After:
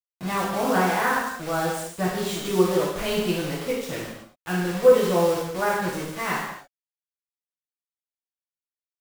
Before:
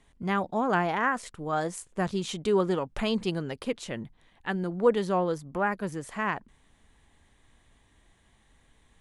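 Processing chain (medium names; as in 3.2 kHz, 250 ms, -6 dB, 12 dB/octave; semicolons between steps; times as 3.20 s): vibrato 1.5 Hz 96 cents; word length cut 6-bit, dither none; gated-style reverb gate 310 ms falling, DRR -7.5 dB; trim -4 dB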